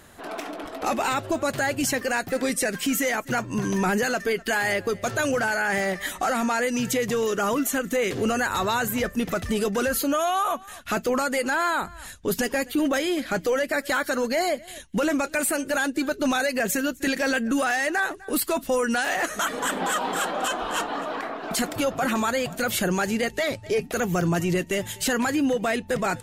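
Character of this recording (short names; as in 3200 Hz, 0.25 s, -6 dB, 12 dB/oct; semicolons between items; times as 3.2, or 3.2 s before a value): noise floor -44 dBFS; spectral tilt -4.0 dB/oct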